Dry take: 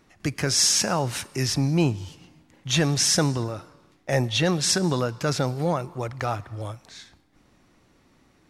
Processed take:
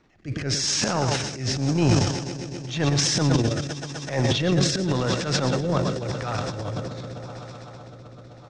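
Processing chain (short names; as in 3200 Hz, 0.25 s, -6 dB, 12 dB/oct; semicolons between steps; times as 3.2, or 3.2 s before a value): Bessel low-pass 4900 Hz, order 8; swelling echo 0.127 s, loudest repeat 5, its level -18 dB; rotary speaker horn 0.9 Hz; echo 0.112 s -10 dB; transient shaper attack -12 dB, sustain +12 dB; gain +1.5 dB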